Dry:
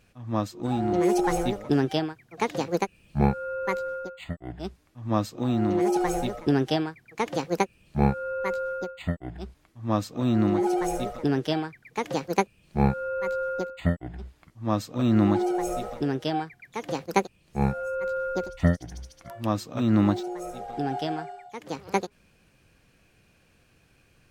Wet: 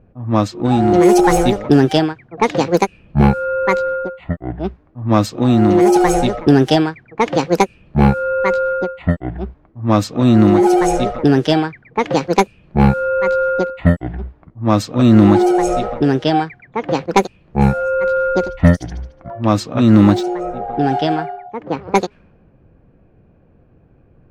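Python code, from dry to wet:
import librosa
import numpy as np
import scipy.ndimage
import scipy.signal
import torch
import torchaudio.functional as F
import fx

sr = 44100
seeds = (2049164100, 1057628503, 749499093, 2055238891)

y = fx.fold_sine(x, sr, drive_db=5, ceiling_db=-5.5)
y = fx.env_lowpass(y, sr, base_hz=640.0, full_db=-12.5)
y = y * librosa.db_to_amplitude(4.0)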